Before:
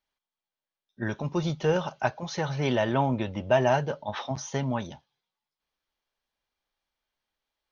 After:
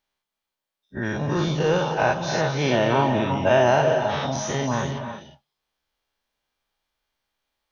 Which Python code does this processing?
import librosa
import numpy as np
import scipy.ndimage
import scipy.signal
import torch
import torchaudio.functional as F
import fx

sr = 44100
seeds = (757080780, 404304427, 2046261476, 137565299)

y = fx.spec_dilate(x, sr, span_ms=120)
y = fx.rev_gated(y, sr, seeds[0], gate_ms=380, shape='rising', drr_db=6.5)